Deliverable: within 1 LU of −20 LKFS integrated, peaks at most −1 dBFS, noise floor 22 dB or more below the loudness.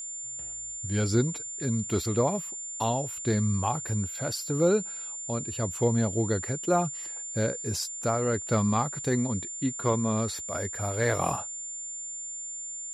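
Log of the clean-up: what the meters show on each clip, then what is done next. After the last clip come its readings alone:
interfering tone 7,200 Hz; level of the tone −35 dBFS; integrated loudness −29.0 LKFS; sample peak −12.5 dBFS; target loudness −20.0 LKFS
→ notch filter 7,200 Hz, Q 30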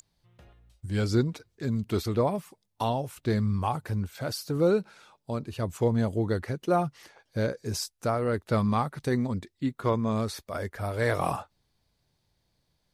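interfering tone none found; integrated loudness −29.0 LKFS; sample peak −13.0 dBFS; target loudness −20.0 LKFS
→ level +9 dB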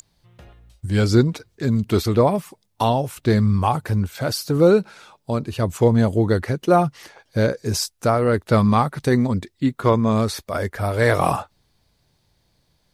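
integrated loudness −20.0 LKFS; sample peak −4.0 dBFS; background noise floor −67 dBFS

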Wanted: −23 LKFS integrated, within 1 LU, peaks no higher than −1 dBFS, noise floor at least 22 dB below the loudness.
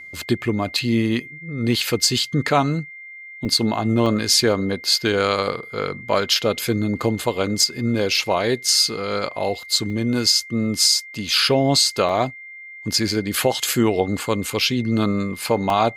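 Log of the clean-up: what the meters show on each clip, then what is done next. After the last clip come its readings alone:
number of dropouts 5; longest dropout 2.0 ms; interfering tone 2,100 Hz; level of the tone −36 dBFS; integrated loudness −20.0 LKFS; sample peak −4.5 dBFS; target loudness −23.0 LKFS
→ repair the gap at 0:03.45/0:04.06/0:09.90/0:12.09/0:15.70, 2 ms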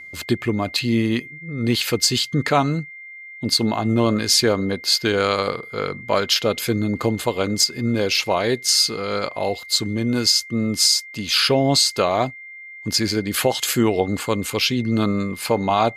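number of dropouts 0; interfering tone 2,100 Hz; level of the tone −36 dBFS
→ notch filter 2,100 Hz, Q 30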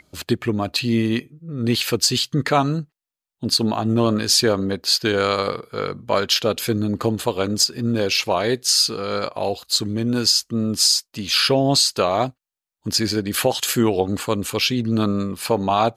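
interfering tone none found; integrated loudness −20.0 LKFS; sample peak −5.0 dBFS; target loudness −23.0 LKFS
→ level −3 dB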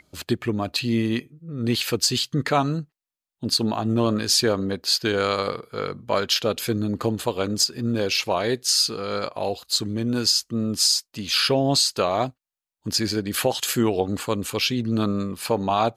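integrated loudness −23.0 LKFS; sample peak −8.0 dBFS; background noise floor −91 dBFS

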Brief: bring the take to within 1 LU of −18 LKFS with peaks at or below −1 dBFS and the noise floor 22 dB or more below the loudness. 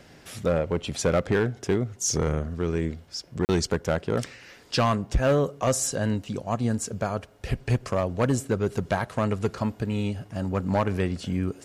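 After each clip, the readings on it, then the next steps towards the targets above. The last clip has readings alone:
share of clipped samples 0.9%; peaks flattened at −16.0 dBFS; number of dropouts 1; longest dropout 39 ms; integrated loudness −27.0 LKFS; sample peak −16.0 dBFS; target loudness −18.0 LKFS
→ clipped peaks rebuilt −16 dBFS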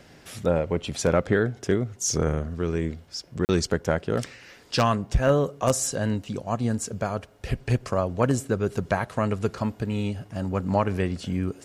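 share of clipped samples 0.0%; number of dropouts 1; longest dropout 39 ms
→ repair the gap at 0:03.45, 39 ms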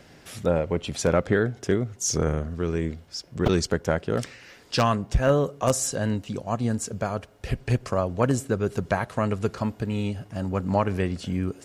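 number of dropouts 0; integrated loudness −26.5 LKFS; sample peak −7.0 dBFS; target loudness −18.0 LKFS
→ level +8.5 dB
brickwall limiter −1 dBFS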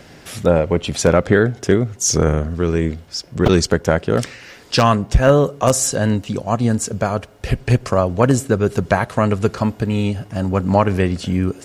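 integrated loudness −18.0 LKFS; sample peak −1.0 dBFS; background noise floor −44 dBFS

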